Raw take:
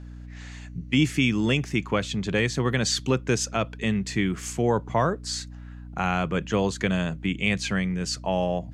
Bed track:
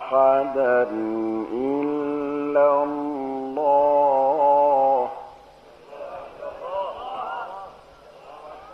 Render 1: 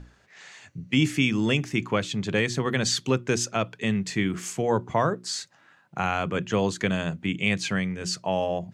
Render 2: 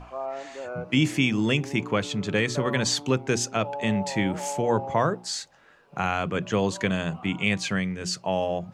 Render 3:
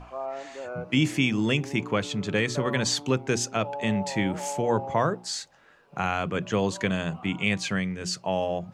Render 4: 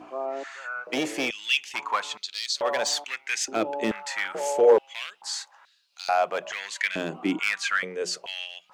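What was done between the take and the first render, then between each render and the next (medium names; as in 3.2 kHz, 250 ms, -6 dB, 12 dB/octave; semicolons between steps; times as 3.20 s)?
hum notches 60/120/180/240/300/360 Hz
add bed track -16 dB
trim -1 dB
hard clipper -19.5 dBFS, distortion -13 dB; step-sequenced high-pass 2.3 Hz 320–4200 Hz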